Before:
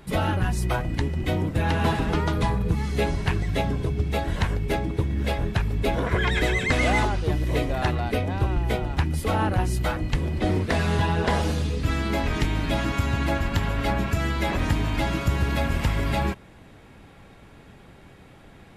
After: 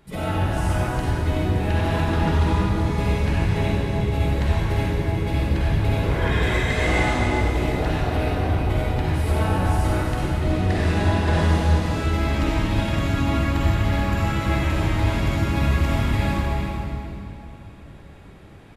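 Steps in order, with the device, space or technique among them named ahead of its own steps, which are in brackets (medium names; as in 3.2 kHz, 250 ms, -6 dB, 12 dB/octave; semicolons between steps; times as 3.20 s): cave (delay 376 ms -8 dB; reverberation RT60 2.9 s, pre-delay 43 ms, DRR -8 dB); trim -8 dB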